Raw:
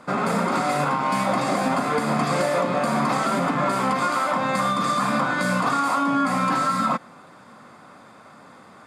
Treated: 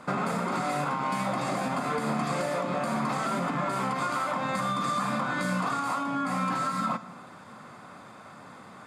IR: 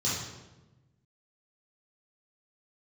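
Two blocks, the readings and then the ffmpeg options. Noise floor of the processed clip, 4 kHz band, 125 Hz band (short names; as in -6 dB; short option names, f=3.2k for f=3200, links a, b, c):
-48 dBFS, -7.0 dB, -5.0 dB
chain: -filter_complex "[0:a]acompressor=threshold=-26dB:ratio=6,asplit=2[a][b];[1:a]atrim=start_sample=2205[c];[b][c]afir=irnorm=-1:irlink=0,volume=-22dB[d];[a][d]amix=inputs=2:normalize=0"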